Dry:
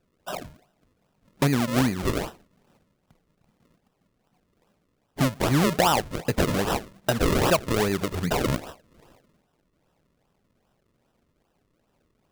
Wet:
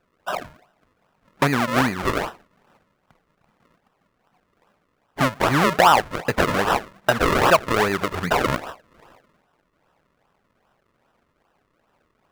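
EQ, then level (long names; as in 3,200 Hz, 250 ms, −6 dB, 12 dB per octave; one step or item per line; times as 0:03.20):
parametric band 1,300 Hz +12 dB 2.6 octaves
−2.0 dB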